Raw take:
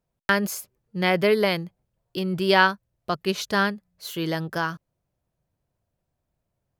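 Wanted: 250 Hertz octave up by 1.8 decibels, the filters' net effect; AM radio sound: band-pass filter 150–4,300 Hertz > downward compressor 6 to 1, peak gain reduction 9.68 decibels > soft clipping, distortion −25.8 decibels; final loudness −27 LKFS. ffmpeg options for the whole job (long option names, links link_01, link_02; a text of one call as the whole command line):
ffmpeg -i in.wav -af "highpass=150,lowpass=4300,equalizer=frequency=250:width_type=o:gain=4.5,acompressor=threshold=-21dB:ratio=6,asoftclip=threshold=-11dB,volume=1.5dB" out.wav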